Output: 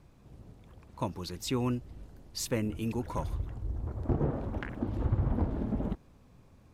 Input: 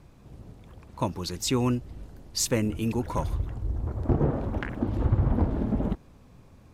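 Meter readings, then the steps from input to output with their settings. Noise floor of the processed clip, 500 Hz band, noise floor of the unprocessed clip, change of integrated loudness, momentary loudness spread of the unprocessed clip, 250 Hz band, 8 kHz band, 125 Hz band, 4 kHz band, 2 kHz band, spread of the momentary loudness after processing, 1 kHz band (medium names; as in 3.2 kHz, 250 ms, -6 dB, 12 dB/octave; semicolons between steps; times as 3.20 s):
-59 dBFS, -5.5 dB, -54 dBFS, -6.0 dB, 11 LU, -5.5 dB, -10.0 dB, -5.5 dB, -7.5 dB, -5.5 dB, 15 LU, -5.5 dB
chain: dynamic bell 6.8 kHz, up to -5 dB, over -47 dBFS, Q 1.3; trim -5.5 dB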